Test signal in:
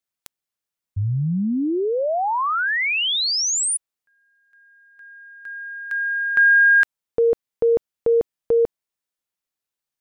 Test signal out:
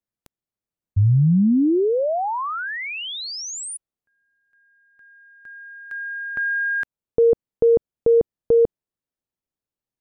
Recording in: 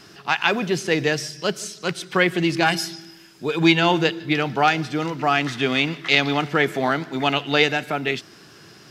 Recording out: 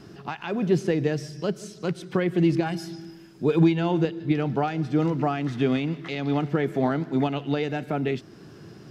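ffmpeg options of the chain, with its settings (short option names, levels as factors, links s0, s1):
-af "alimiter=limit=0.224:level=0:latency=1:release=367,tiltshelf=f=760:g=8.5,volume=0.841"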